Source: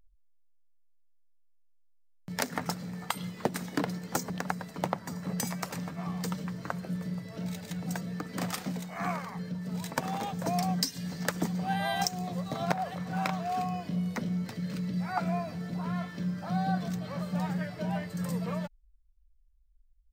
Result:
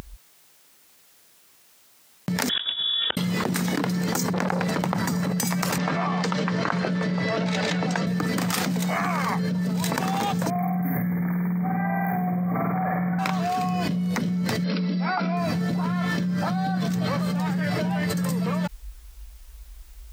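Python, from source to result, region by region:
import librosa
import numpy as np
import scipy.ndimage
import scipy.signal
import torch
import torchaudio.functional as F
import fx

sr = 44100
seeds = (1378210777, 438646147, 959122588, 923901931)

y = fx.chain(x, sr, fx.gate_flip(shuts_db=-28.0, range_db=-33),
    fx.band_shelf(hz=1100.0, db=-13.5, octaves=1.3),
    fx.freq_invert(carrier_hz=3600), at=(2.49, 3.17))
y = fx.chain(y, sr, fx.high_shelf(hz=7900.0, db=-10.0),
    fx.over_compress(threshold_db=-37.0, ratio=-0.5),
    fx.transformer_sat(knee_hz=1300.0), at=(4.33, 4.79))
y = fx.chain(y, sr, fx.highpass(hz=530.0, slope=6),
    fx.air_absorb(metres=150.0), at=(5.78, 8.07))
y = fx.chain(y, sr, fx.over_compress(threshold_db=-34.0, ratio=-0.5),
    fx.brickwall_bandstop(low_hz=2400.0, high_hz=13000.0),
    fx.room_flutter(wall_m=8.7, rt60_s=1.2), at=(10.5, 13.19))
y = fx.chain(y, sr, fx.brickwall_bandpass(low_hz=170.0, high_hz=5700.0),
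    fx.notch(hz=1800.0, q=11.0), at=(14.64, 15.37))
y = scipy.signal.sosfilt(scipy.signal.butter(2, 99.0, 'highpass', fs=sr, output='sos'), y)
y = fx.dynamic_eq(y, sr, hz=620.0, q=2.1, threshold_db=-45.0, ratio=4.0, max_db=-5)
y = fx.env_flatten(y, sr, amount_pct=100)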